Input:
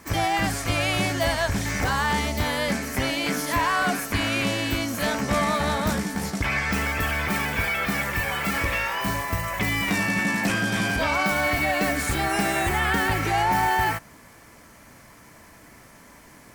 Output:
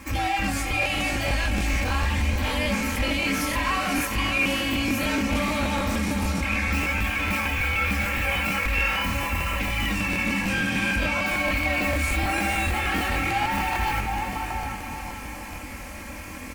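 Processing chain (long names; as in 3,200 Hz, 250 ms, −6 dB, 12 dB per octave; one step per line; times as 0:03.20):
in parallel at −1 dB: brickwall limiter −24 dBFS, peak gain reduction 10.5 dB
on the sum: parametric band 66 Hz +12.5 dB 1.5 octaves
slap from a distant wall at 130 metres, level −15 dB
chorus effect 0.71 Hz, delay 19 ms, depth 7.4 ms
hard clipping −18 dBFS, distortion −12 dB
parametric band 2,500 Hz +10 dB 0.37 octaves
reversed playback
downward compressor 6 to 1, threshold −29 dBFS, peak gain reduction 12 dB
reversed playback
comb filter 3.7 ms, depth 86%
feedback delay with all-pass diffusion 523 ms, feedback 43%, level −8 dB
regular buffer underruns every 0.15 s, samples 1,024, repeat, from 0:00.66
level +3.5 dB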